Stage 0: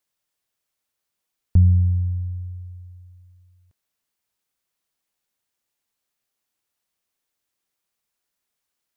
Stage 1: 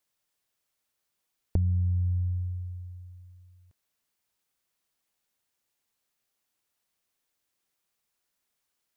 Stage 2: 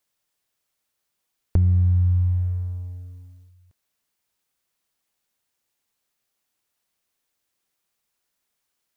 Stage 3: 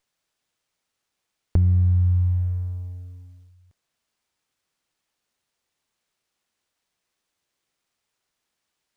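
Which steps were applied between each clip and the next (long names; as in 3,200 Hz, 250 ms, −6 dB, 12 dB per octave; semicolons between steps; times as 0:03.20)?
downward compressor 6 to 1, threshold −24 dBFS, peak gain reduction 12.5 dB
leveller curve on the samples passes 1; level +4.5 dB
windowed peak hold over 3 samples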